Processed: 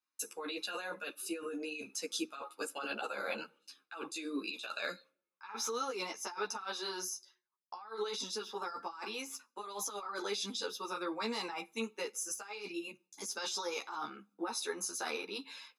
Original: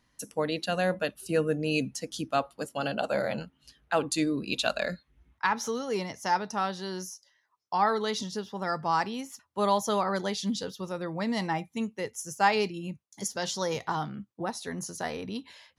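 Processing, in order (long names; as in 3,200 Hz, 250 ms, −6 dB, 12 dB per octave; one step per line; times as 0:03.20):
noise gate with hold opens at −51 dBFS
high-pass filter 380 Hz 24 dB per octave
notch filter 1,000 Hz, Q 15
comb filter 0.8 ms, depth 70%
compressor whose output falls as the input rises −36 dBFS, ratio −1
on a send at −23 dB: convolution reverb RT60 0.55 s, pre-delay 3 ms
on the sum: string-ensemble chorus
level −1 dB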